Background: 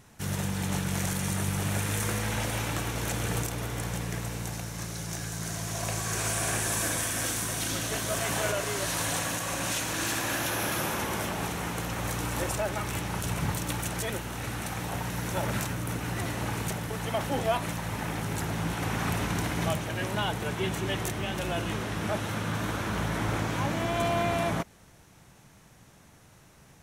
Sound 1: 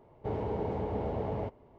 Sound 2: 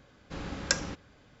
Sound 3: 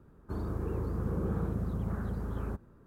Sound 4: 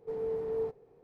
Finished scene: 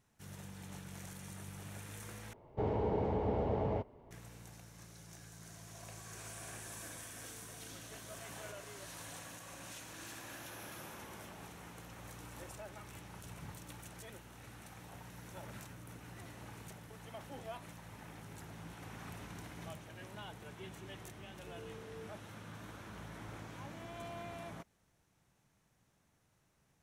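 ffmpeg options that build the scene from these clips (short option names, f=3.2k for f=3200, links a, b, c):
-filter_complex "[4:a]asplit=2[a][b];[0:a]volume=-19dB[c];[a]asplit=3[d][e][f];[d]bandpass=f=730:t=q:w=8,volume=0dB[g];[e]bandpass=f=1.09k:t=q:w=8,volume=-6dB[h];[f]bandpass=f=2.44k:t=q:w=8,volume=-9dB[i];[g][h][i]amix=inputs=3:normalize=0[j];[b]highpass=420[k];[c]asplit=2[l][m];[l]atrim=end=2.334[n];[1:a]atrim=end=1.78,asetpts=PTS-STARTPTS,volume=-0.5dB[o];[m]atrim=start=4.106[p];[j]atrim=end=1.03,asetpts=PTS-STARTPTS,volume=-15.5dB,afade=t=in:d=0.004:c=hsin,afade=t=out:st=1.026:d=0.004:c=hsin,adelay=7040[q];[k]atrim=end=1.03,asetpts=PTS-STARTPTS,volume=-16dB,afade=t=in:d=0.004:c=hsin,afade=t=out:st=1.026:d=0.004:c=hsin,adelay=21390[r];[n][o]acrossfade=d=0.004:c1=hsin:c2=hsin[s];[s][p]acrossfade=d=0.004:c1=hsin:c2=hsin[t];[t][q][r]amix=inputs=3:normalize=0"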